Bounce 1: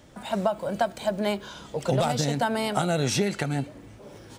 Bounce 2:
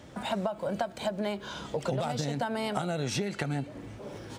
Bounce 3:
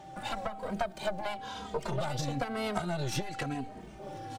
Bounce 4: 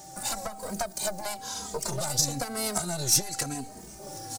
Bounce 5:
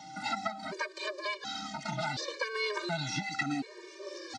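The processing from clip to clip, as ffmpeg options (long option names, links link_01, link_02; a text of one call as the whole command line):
ffmpeg -i in.wav -af "highpass=51,highshelf=frequency=7000:gain=-7.5,acompressor=threshold=-32dB:ratio=5,volume=3.5dB" out.wav
ffmpeg -i in.wav -filter_complex "[0:a]aeval=exprs='0.158*(cos(1*acos(clip(val(0)/0.158,-1,1)))-cos(1*PI/2))+0.0398*(cos(4*acos(clip(val(0)/0.158,-1,1)))-cos(4*PI/2))':channel_layout=same,aeval=exprs='val(0)+0.00891*sin(2*PI*780*n/s)':channel_layout=same,asplit=2[link_01][link_02];[link_02]adelay=2.9,afreqshift=-1[link_03];[link_01][link_03]amix=inputs=2:normalize=1" out.wav
ffmpeg -i in.wav -af "aexciter=amount=7.1:drive=8.1:freq=4700" out.wav
ffmpeg -i in.wav -filter_complex "[0:a]acrossover=split=2800[link_01][link_02];[link_02]acompressor=threshold=-34dB:ratio=4:attack=1:release=60[link_03];[link_01][link_03]amix=inputs=2:normalize=0,highpass=250,equalizer=frequency=490:width_type=q:width=4:gain=-6,equalizer=frequency=720:width_type=q:width=4:gain=-8,equalizer=frequency=2100:width_type=q:width=4:gain=6,equalizer=frequency=3600:width_type=q:width=4:gain=3,lowpass=frequency=4600:width=0.5412,lowpass=frequency=4600:width=1.3066,afftfilt=real='re*gt(sin(2*PI*0.69*pts/sr)*(1-2*mod(floor(b*sr/1024/310),2)),0)':imag='im*gt(sin(2*PI*0.69*pts/sr)*(1-2*mod(floor(b*sr/1024/310),2)),0)':win_size=1024:overlap=0.75,volume=6.5dB" out.wav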